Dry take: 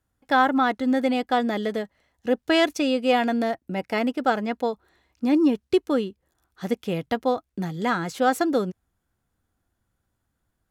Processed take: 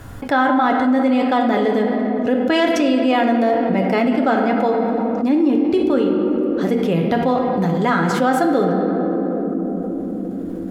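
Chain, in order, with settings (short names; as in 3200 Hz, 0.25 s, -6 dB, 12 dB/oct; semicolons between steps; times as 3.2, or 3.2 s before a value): high shelf 3100 Hz -8.5 dB; reverb RT60 2.6 s, pre-delay 7 ms, DRR 2.5 dB; fast leveller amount 70%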